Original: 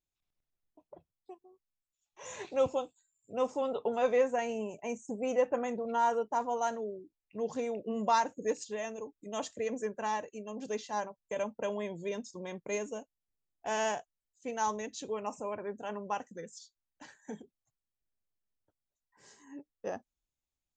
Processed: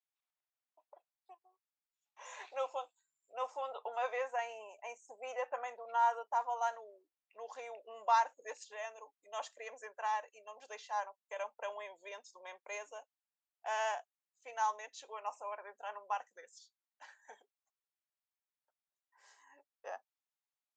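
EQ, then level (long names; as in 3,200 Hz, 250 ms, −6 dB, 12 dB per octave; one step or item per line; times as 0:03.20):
high-pass filter 710 Hz 24 dB per octave
high-shelf EQ 3,900 Hz −11.5 dB
0.0 dB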